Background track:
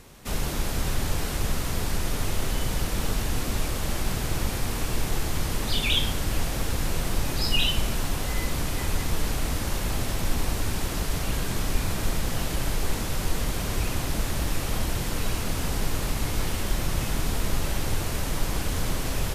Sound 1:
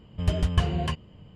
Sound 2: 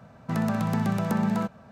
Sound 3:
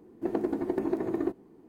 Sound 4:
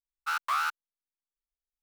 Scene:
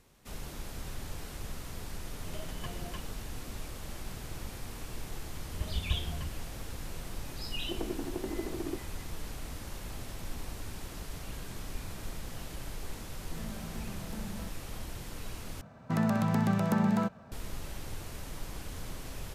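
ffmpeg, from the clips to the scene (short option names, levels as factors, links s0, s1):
-filter_complex "[1:a]asplit=2[s0][s1];[2:a]asplit=2[s2][s3];[0:a]volume=0.2[s4];[s0]highpass=200[s5];[s1]asubboost=boost=11:cutoff=120[s6];[s2]equalizer=f=1100:t=o:w=0.77:g=-7[s7];[s4]asplit=2[s8][s9];[s8]atrim=end=15.614[s10];[s3]atrim=end=1.71,asetpts=PTS-STARTPTS,volume=0.794[s11];[s9]atrim=start=17.316[s12];[s5]atrim=end=1.35,asetpts=PTS-STARTPTS,volume=0.211,afade=t=in:d=0.004:c=hsin,afade=t=out:st=1.346:d=0.004:c=hsin,adelay=2060[s13];[s6]atrim=end=1.35,asetpts=PTS-STARTPTS,volume=0.158,afade=t=in:d=0.004:c=hsin,afade=t=out:st=1.346:d=0.004:c=hsin,adelay=235053S[s14];[3:a]atrim=end=1.68,asetpts=PTS-STARTPTS,volume=0.398,afade=t=in:d=0.004:c=hsin,afade=t=out:st=1.676:d=0.004:c=hsin,adelay=328986S[s15];[s7]atrim=end=1.71,asetpts=PTS-STARTPTS,volume=0.133,afade=t=in:d=0.004:c=hsin,afade=t=out:st=1.706:d=0.004:c=hsin,adelay=13020[s16];[s10][s11]acrossfade=d=0.004:c1=hsin:c2=hsin[s17];[s17][s12]acrossfade=d=0.004:c1=hsin:c2=hsin[s18];[s18][s13][s14][s15][s16]amix=inputs=5:normalize=0"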